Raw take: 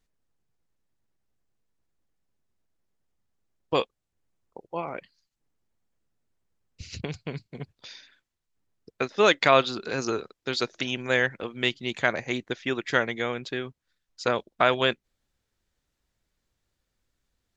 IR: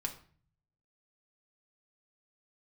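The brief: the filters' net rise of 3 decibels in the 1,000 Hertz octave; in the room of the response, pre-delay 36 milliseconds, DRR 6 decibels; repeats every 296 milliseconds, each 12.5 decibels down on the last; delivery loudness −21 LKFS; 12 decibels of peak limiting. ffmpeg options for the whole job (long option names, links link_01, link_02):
-filter_complex "[0:a]equalizer=frequency=1000:width_type=o:gain=4,alimiter=limit=-14.5dB:level=0:latency=1,aecho=1:1:296|592|888:0.237|0.0569|0.0137,asplit=2[link_01][link_02];[1:a]atrim=start_sample=2205,adelay=36[link_03];[link_02][link_03]afir=irnorm=-1:irlink=0,volume=-6.5dB[link_04];[link_01][link_04]amix=inputs=2:normalize=0,volume=8.5dB"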